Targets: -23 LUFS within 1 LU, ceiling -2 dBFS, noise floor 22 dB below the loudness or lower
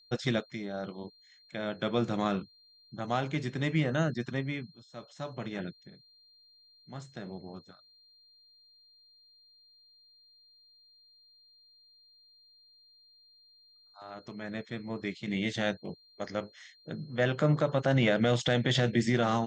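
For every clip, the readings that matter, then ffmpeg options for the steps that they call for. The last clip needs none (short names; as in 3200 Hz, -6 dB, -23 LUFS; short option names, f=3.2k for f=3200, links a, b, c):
steady tone 4200 Hz; tone level -59 dBFS; loudness -31.5 LUFS; peak -13.0 dBFS; loudness target -23.0 LUFS
-> -af "bandreject=f=4.2k:w=30"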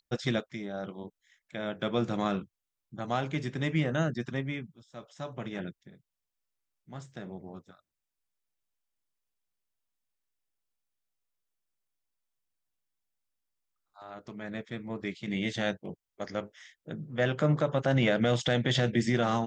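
steady tone none; loudness -31.0 LUFS; peak -13.0 dBFS; loudness target -23.0 LUFS
-> -af "volume=8dB"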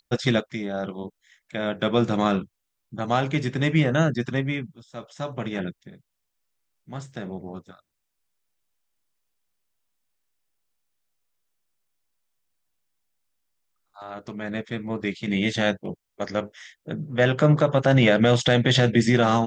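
loudness -23.0 LUFS; peak -5.0 dBFS; noise floor -79 dBFS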